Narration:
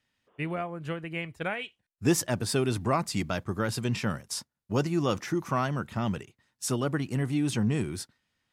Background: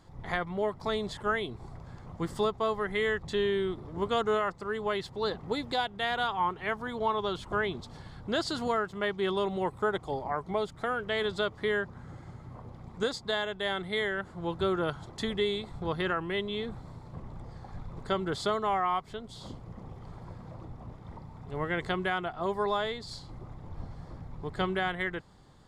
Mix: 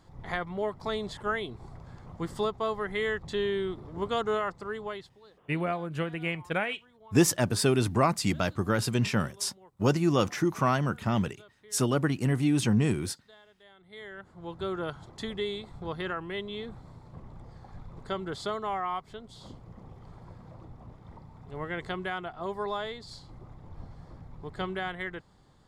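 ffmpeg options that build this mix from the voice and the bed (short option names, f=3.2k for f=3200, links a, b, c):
-filter_complex "[0:a]adelay=5100,volume=2.5dB[a];[1:a]volume=20.5dB,afade=t=out:st=4.63:d=0.57:silence=0.0630957,afade=t=in:st=13.78:d=1.04:silence=0.0841395[b];[a][b]amix=inputs=2:normalize=0"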